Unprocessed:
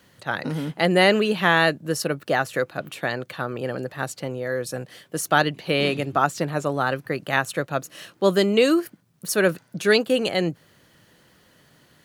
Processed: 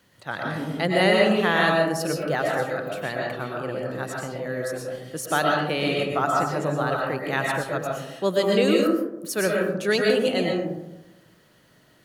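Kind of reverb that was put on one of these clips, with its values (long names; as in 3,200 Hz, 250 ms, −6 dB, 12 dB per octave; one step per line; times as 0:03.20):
comb and all-pass reverb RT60 0.98 s, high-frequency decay 0.3×, pre-delay 80 ms, DRR −1.5 dB
level −5 dB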